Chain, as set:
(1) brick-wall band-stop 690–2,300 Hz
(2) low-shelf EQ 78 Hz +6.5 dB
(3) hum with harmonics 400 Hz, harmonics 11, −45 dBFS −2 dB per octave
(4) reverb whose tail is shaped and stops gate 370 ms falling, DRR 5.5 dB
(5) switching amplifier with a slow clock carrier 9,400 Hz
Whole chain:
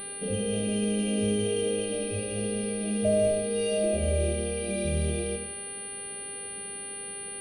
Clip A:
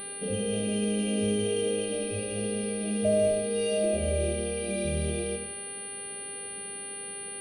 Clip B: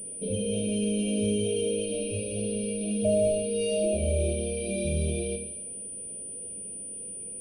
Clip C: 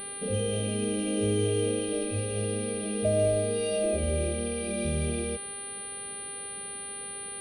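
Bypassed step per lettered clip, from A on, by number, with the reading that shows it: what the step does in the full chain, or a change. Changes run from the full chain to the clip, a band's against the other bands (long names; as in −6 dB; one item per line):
2, 125 Hz band −2.5 dB
3, 2 kHz band −4.0 dB
4, 1 kHz band +2.5 dB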